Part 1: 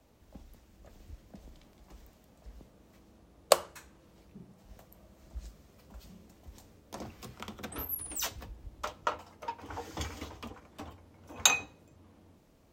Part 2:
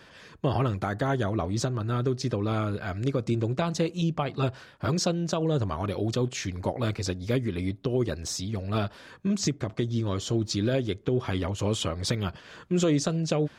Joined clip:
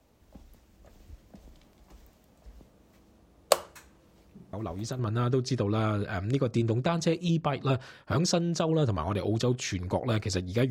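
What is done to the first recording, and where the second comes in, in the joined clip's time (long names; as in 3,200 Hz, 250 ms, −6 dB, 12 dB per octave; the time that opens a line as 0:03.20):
part 1
0:04.53: mix in part 2 from 0:01.26 0.46 s −7 dB
0:04.99: continue with part 2 from 0:01.72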